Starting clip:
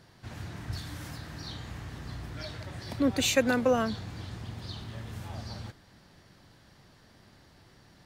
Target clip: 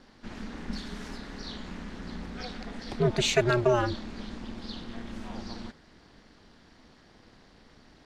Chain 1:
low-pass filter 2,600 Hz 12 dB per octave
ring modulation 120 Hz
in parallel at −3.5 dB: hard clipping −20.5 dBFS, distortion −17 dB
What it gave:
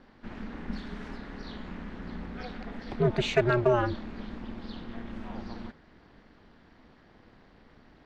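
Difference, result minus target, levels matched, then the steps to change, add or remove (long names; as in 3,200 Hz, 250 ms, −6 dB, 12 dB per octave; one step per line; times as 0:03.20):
8,000 Hz band −13.0 dB
change: low-pass filter 6,400 Hz 12 dB per octave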